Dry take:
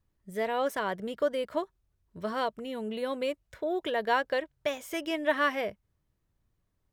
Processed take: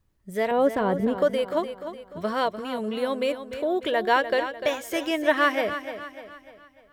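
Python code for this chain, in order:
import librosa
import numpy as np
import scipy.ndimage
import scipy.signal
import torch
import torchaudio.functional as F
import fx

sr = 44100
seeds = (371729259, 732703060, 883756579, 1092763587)

y = fx.tilt_shelf(x, sr, db=9.5, hz=780.0, at=(0.51, 1.18))
y = fx.echo_feedback(y, sr, ms=298, feedback_pct=45, wet_db=-10.5)
y = y * 10.0 ** (5.5 / 20.0)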